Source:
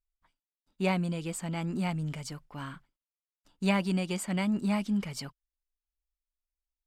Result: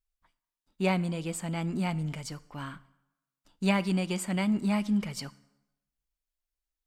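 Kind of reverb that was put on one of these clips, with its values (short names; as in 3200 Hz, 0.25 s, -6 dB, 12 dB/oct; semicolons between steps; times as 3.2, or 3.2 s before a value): plate-style reverb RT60 0.92 s, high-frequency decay 0.8×, DRR 17 dB; gain +1 dB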